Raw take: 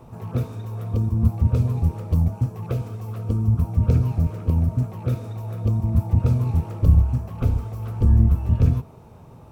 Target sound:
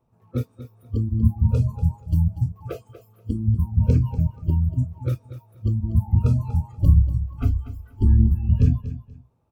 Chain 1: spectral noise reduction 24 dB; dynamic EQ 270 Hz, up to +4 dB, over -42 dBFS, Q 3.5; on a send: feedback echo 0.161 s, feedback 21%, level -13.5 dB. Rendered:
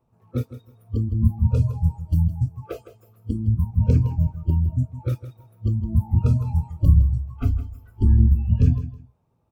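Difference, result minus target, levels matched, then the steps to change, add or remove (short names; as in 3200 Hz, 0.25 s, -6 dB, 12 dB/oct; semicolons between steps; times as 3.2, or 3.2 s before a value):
echo 79 ms early
change: feedback echo 0.24 s, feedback 21%, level -13.5 dB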